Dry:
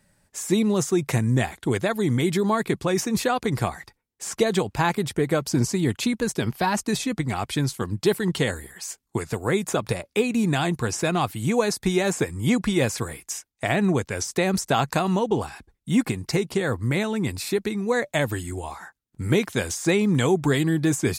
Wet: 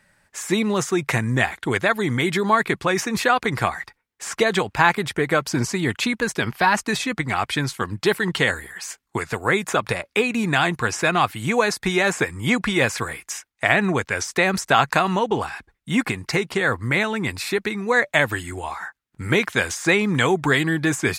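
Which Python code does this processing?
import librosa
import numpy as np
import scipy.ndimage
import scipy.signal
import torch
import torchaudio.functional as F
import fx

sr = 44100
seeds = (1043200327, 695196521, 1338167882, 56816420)

y = fx.peak_eq(x, sr, hz=1700.0, db=12.0, octaves=2.4)
y = y * 10.0 ** (-2.0 / 20.0)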